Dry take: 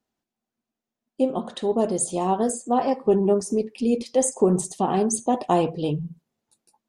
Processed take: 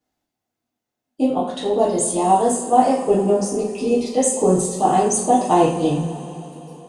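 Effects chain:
coupled-rooms reverb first 0.4 s, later 3.7 s, from −18 dB, DRR −7 dB
level −2 dB

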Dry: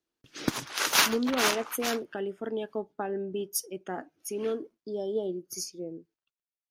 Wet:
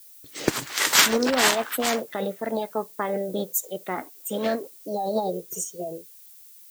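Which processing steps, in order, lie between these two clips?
formants moved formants +4 semitones
background noise violet −54 dBFS
level +5.5 dB

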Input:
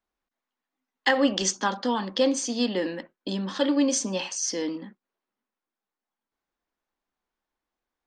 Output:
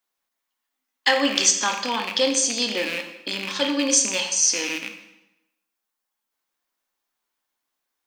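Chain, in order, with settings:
loose part that buzzes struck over −42 dBFS, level −22 dBFS
spectral tilt +3 dB per octave
convolution reverb RT60 0.90 s, pre-delay 6 ms, DRR 4.5 dB
level +1 dB

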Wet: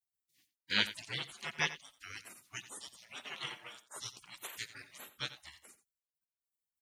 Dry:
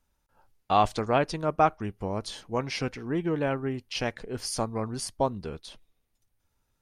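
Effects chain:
high-pass filter 610 Hz 12 dB per octave
parametric band 11,000 Hz −9 dB 0.79 octaves
gate on every frequency bin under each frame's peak −30 dB weak
single-tap delay 88 ms −14.5 dB
level +14.5 dB

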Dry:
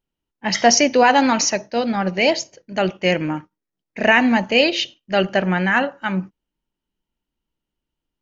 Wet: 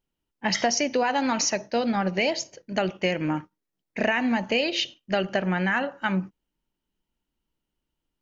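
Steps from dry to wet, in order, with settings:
downward compressor 6 to 1, threshold −21 dBFS, peak gain reduction 12 dB

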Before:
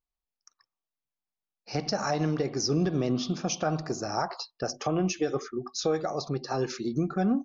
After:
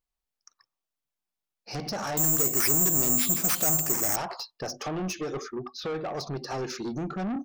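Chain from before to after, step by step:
0:05.57–0:06.14: low-pass filter 5,000 Hz → 2,900 Hz 24 dB per octave
soft clipping −30.5 dBFS, distortion −8 dB
0:02.17–0:04.16: bad sample-rate conversion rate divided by 6×, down none, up zero stuff
level +2.5 dB

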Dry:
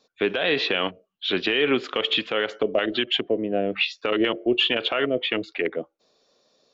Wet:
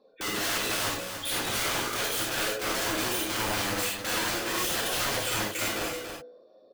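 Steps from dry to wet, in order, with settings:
expanding power law on the bin magnitudes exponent 2
low-pass filter 1,700 Hz 12 dB per octave
hum removal 61.64 Hz, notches 35
harmonic and percussive parts rebalanced percussive +8 dB
downward compressor 2.5 to 1, threshold −28 dBFS, peak gain reduction 10 dB
wrap-around overflow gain 29.5 dB
on a send: single-tap delay 283 ms −7.5 dB
on the sum: reverb whose tail is shaped and stops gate 120 ms flat, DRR −3.5 dB

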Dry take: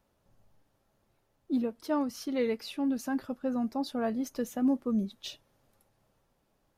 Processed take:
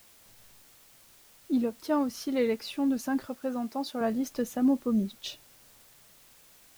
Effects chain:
0:03.27–0:04.01: high-pass filter 350 Hz 6 dB per octave
bit-depth reduction 10 bits, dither triangular
level +2.5 dB

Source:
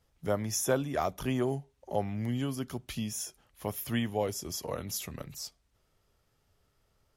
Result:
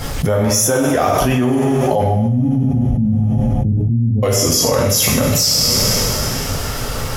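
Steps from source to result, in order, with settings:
spectral magnitudes quantised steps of 15 dB
0:02.03–0:04.23: inverse Chebyshev low-pass filter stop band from 1,000 Hz, stop band 70 dB
coupled-rooms reverb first 0.77 s, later 3.2 s, from −21 dB, DRR −2 dB
envelope flattener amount 100%
level +6.5 dB

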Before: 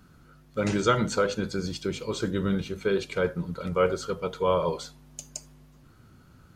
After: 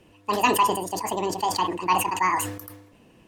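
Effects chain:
low-pass filter 6,800 Hz 12 dB per octave
hollow resonant body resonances 500/870 Hz, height 8 dB, ringing for 45 ms
wrong playback speed 7.5 ips tape played at 15 ips
level that may fall only so fast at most 70 dB per second
level −1 dB

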